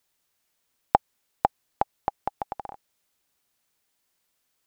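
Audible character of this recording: noise floor -76 dBFS; spectral tilt -1.5 dB/octave

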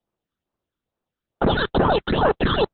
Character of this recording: aliases and images of a low sample rate 2.2 kHz, jitter 0%; phasing stages 8, 2.3 Hz, lowest notch 700–3800 Hz; Opus

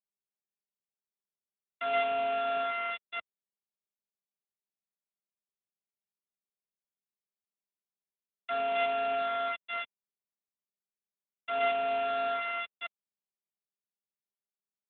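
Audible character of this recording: a buzz of ramps at a fixed pitch in blocks of 64 samples; tremolo triangle 3.2 Hz, depth 30%; a quantiser's noise floor 6-bit, dither none; AMR-NB

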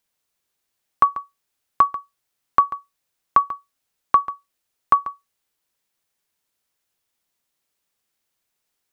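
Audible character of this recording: noise floor -78 dBFS; spectral tilt -2.5 dB/octave

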